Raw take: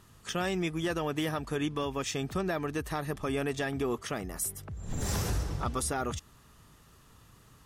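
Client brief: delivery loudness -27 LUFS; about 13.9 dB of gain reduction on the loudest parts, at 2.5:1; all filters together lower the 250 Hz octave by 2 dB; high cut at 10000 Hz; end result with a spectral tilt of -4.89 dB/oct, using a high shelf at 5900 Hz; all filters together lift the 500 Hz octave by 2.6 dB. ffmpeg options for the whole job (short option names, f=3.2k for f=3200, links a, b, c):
-af "lowpass=10k,equalizer=f=250:t=o:g=-5,equalizer=f=500:t=o:g=5,highshelf=f=5.9k:g=-7,acompressor=threshold=-49dB:ratio=2.5,volume=19dB"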